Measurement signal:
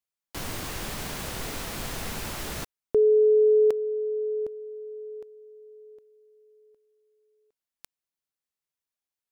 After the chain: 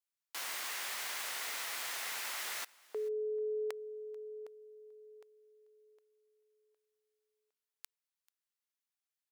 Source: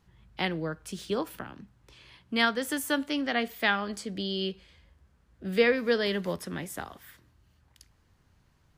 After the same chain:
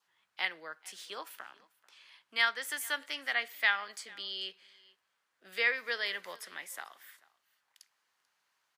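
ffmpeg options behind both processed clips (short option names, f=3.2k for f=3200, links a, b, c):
-af "aecho=1:1:439:0.0668,adynamicequalizer=threshold=0.00398:dfrequency=2000:dqfactor=4.5:tfrequency=2000:tqfactor=4.5:attack=5:release=100:ratio=0.375:range=3:mode=boostabove:tftype=bell,highpass=1k,volume=-3dB"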